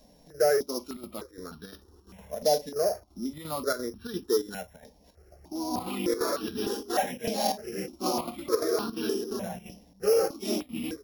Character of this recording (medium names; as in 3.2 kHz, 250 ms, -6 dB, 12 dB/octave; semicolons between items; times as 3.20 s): a buzz of ramps at a fixed pitch in blocks of 8 samples; chopped level 2.9 Hz, depth 60%, duty 80%; notches that jump at a steady rate 3.3 Hz 360–2100 Hz